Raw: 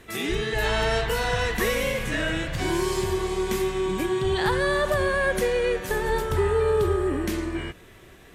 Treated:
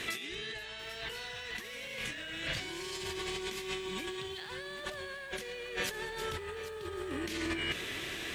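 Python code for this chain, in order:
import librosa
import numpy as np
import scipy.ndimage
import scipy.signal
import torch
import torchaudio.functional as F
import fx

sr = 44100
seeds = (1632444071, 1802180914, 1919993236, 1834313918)

y = fx.weighting(x, sr, curve='D')
y = fx.over_compress(y, sr, threshold_db=-35.0, ratio=-1.0)
y = fx.low_shelf(y, sr, hz=66.0, db=7.5)
y = fx.echo_crushed(y, sr, ms=791, feedback_pct=35, bits=8, wet_db=-13.0)
y = y * librosa.db_to_amplitude(-5.5)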